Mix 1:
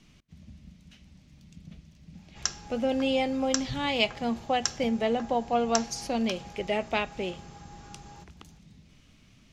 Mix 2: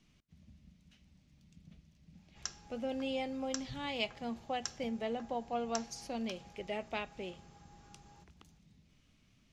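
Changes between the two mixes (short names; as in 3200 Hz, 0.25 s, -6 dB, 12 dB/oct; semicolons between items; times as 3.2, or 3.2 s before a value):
speech -10.5 dB; background -11.5 dB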